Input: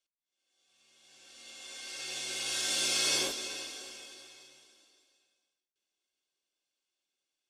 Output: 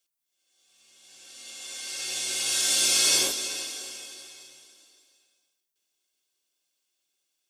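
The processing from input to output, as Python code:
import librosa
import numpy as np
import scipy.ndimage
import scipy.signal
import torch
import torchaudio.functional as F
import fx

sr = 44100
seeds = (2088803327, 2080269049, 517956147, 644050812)

y = fx.high_shelf(x, sr, hz=6100.0, db=11.5)
y = y * 10.0 ** (3.0 / 20.0)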